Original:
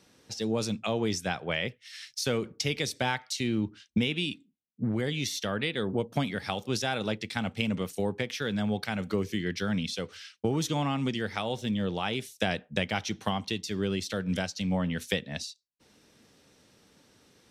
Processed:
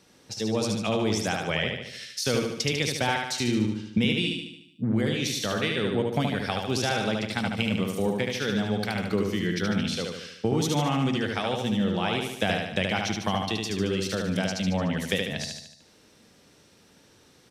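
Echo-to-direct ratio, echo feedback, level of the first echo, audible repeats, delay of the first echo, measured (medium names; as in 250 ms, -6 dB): -2.0 dB, 53%, -3.5 dB, 6, 74 ms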